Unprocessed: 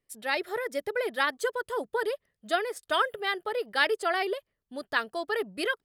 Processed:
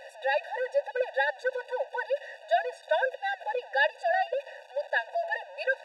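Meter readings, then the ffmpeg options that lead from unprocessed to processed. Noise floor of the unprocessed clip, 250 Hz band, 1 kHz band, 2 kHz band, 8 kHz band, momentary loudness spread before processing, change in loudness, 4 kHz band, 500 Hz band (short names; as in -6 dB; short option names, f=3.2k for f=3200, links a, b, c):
-85 dBFS, under -30 dB, +0.5 dB, +0.5 dB, under -10 dB, 7 LU, 0.0 dB, -7.0 dB, +1.5 dB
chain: -af "aeval=exprs='val(0)+0.5*0.0211*sgn(val(0))':c=same,highpass=150,lowpass=3k,equalizer=f=510:w=0.84:g=4.5,bandreject=f=224.5:t=h:w=4,bandreject=f=449:t=h:w=4,bandreject=f=673.5:t=h:w=4,afftfilt=real='re*eq(mod(floor(b*sr/1024/490),2),1)':imag='im*eq(mod(floor(b*sr/1024/490),2),1)':win_size=1024:overlap=0.75"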